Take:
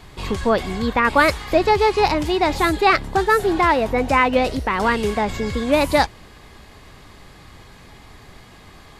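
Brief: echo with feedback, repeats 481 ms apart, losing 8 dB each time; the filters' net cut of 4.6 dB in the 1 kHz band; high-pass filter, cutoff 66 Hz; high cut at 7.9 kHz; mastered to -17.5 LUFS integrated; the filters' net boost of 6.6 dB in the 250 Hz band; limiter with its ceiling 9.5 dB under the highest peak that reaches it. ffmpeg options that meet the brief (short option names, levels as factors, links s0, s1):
-af "highpass=66,lowpass=7900,equalizer=f=250:t=o:g=8.5,equalizer=f=1000:t=o:g=-6.5,alimiter=limit=0.251:level=0:latency=1,aecho=1:1:481|962|1443|1924|2405:0.398|0.159|0.0637|0.0255|0.0102,volume=1.5"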